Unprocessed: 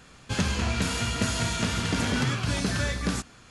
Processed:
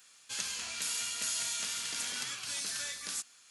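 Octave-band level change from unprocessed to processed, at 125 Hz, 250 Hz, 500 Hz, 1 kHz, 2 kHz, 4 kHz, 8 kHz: -34.0, -28.5, -21.5, -15.0, -10.0, -4.5, +1.0 dB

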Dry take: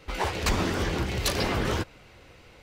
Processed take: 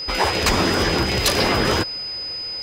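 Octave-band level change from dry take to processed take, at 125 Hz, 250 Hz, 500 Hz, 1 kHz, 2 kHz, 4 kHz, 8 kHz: +4.5, +7.5, +9.0, +9.0, +9.5, +12.5, +8.5 dB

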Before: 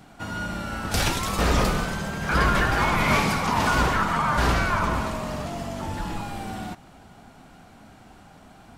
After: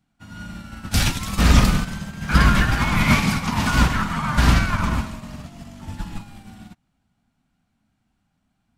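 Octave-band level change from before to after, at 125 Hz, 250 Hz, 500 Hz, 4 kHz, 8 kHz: +6.5, +5.0, -5.0, +3.5, +3.0 dB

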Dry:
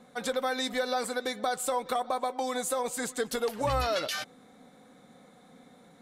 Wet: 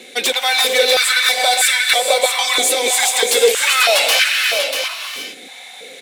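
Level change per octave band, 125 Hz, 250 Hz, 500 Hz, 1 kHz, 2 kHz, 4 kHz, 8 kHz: under -10 dB, 0.0 dB, +13.0 dB, +11.0 dB, +21.5 dB, +23.5 dB, +21.0 dB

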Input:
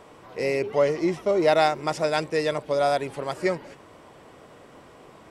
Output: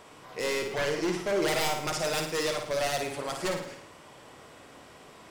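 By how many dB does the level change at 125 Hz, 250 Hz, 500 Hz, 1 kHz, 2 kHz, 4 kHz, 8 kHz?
-4.5, -5.5, -7.0, -7.0, -1.5, +1.5, +7.5 dB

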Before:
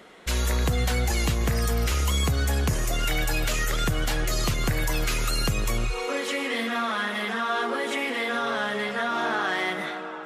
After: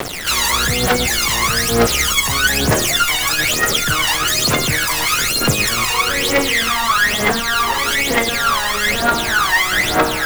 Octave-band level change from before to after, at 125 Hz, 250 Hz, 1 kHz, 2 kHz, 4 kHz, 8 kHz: +2.5, +8.0, +11.5, +13.0, +15.0, +15.5 dB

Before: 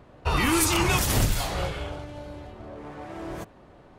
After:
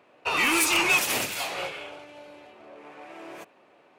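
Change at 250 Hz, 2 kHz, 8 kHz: -6.0, +5.5, -0.5 dB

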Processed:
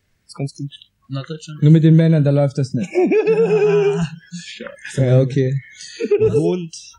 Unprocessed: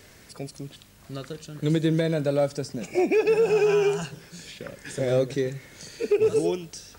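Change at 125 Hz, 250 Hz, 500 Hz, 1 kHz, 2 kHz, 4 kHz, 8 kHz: +15.5, +11.0, +6.0, +4.5, +4.5, +4.5, +3.5 dB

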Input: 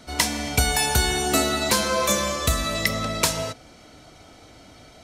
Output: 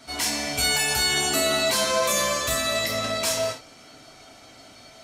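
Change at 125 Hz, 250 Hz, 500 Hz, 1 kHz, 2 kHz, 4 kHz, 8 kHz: -9.5, -5.5, +1.0, -2.5, 0.0, +1.5, 0.0 dB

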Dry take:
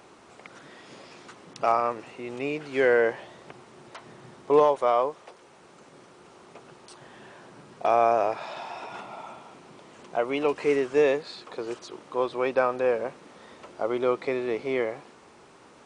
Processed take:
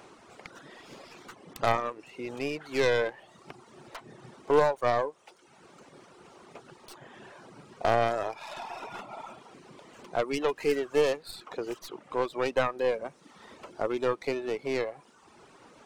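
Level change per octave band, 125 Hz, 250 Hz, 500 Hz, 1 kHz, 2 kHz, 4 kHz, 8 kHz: +3.0 dB, -3.5 dB, -4.0 dB, -4.5 dB, -2.5 dB, +2.0 dB, n/a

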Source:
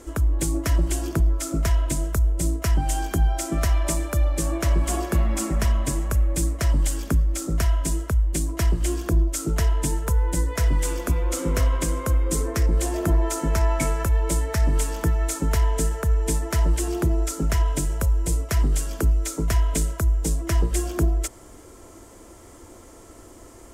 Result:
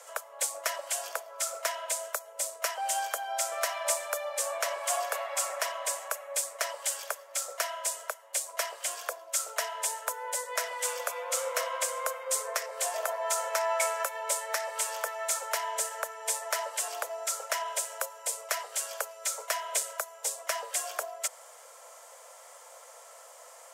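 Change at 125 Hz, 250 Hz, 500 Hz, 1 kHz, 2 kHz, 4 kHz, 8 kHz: under -40 dB, under -40 dB, -4.0 dB, 0.0 dB, 0.0 dB, 0.0 dB, 0.0 dB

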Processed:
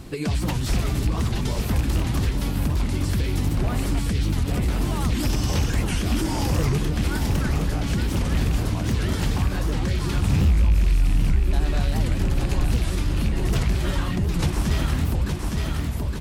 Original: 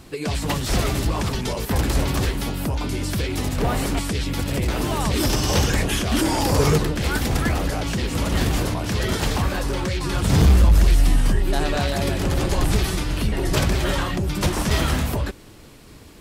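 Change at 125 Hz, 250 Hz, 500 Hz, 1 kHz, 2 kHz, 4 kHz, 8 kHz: 0.0, -2.0, -6.5, -6.0, -5.5, -6.0, -6.0 dB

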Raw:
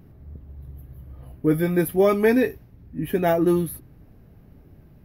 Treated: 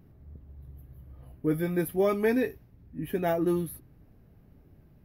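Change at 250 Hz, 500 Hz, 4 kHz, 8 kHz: -7.0, -7.0, -7.0, -7.0 dB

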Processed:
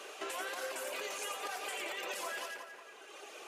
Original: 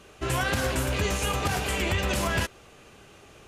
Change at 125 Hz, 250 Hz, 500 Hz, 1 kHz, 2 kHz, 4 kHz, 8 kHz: under -40 dB, -22.0 dB, -11.5 dB, -10.5 dB, -10.5 dB, -10.5 dB, -10.0 dB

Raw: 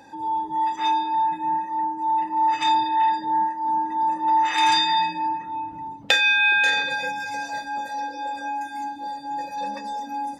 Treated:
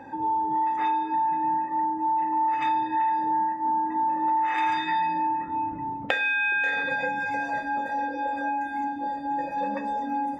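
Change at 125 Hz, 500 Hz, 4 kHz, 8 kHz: n/a, +2.5 dB, -15.5 dB, under -15 dB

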